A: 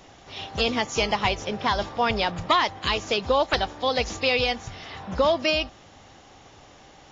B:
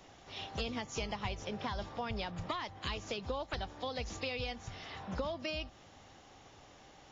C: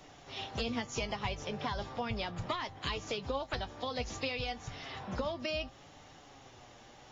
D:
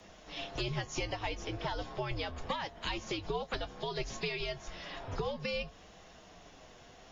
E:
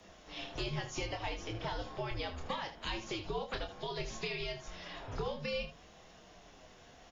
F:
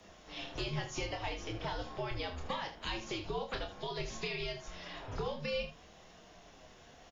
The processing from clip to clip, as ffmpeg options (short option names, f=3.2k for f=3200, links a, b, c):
-filter_complex "[0:a]acrossover=split=190[a][b];[b]acompressor=threshold=-30dB:ratio=4[c];[a][c]amix=inputs=2:normalize=0,volume=-7.5dB"
-af "flanger=delay=6.7:depth=1.8:regen=54:speed=0.66:shape=sinusoidal,volume=6.5dB"
-af "afreqshift=-97"
-af "aecho=1:1:27|78:0.473|0.282,volume=-3dB"
-filter_complex "[0:a]asplit=2[a][b];[b]adelay=40,volume=-12.5dB[c];[a][c]amix=inputs=2:normalize=0"